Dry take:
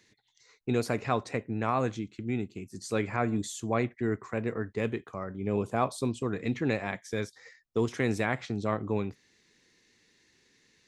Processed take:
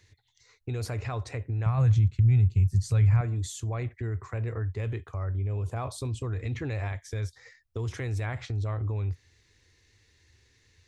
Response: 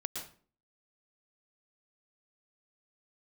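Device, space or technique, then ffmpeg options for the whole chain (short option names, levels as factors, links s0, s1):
car stereo with a boomy subwoofer: -filter_complex "[0:a]lowshelf=f=130:t=q:w=3:g=13.5,alimiter=level_in=1.12:limit=0.0631:level=0:latency=1:release=37,volume=0.891,asettb=1/sr,asplit=3[s0][s1][s2];[s0]atrim=end=1.664[s3];[s1]atrim=start=1.66:end=3.21,asetpts=PTS-STARTPTS,afade=t=in:d=0.004:c=qsin,afade=t=out:st=1.546:d=0.004:c=qsin,lowshelf=f=220:t=q:w=3:g=8[s4];[s2]atrim=start=3.206[s5];[s3][s4]acrossfade=d=0.004:c1=hsin:c2=qsin[s6];[s6][s5]acrossfade=d=0.004:c1=qsin:c2=hsin"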